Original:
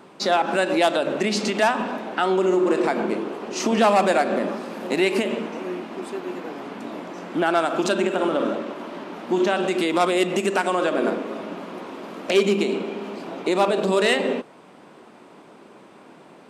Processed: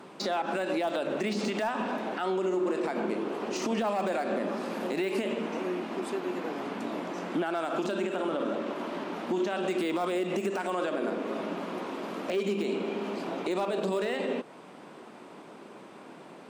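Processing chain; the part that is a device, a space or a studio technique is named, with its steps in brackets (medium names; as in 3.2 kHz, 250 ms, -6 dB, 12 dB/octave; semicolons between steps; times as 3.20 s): podcast mastering chain (high-pass 94 Hz; de-esser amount 75%; compression 2.5:1, threshold -28 dBFS, peak gain reduction 9.5 dB; peak limiter -20.5 dBFS, peak gain reduction 8 dB; MP3 112 kbps 44.1 kHz)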